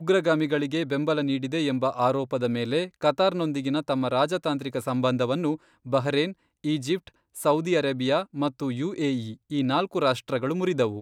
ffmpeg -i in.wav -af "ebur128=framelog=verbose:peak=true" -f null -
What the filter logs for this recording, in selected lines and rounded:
Integrated loudness:
  I:         -26.0 LUFS
  Threshold: -36.0 LUFS
Loudness range:
  LRA:         1.6 LU
  Threshold: -46.2 LUFS
  LRA low:   -27.0 LUFS
  LRA high:  -25.4 LUFS
True peak:
  Peak:       -9.6 dBFS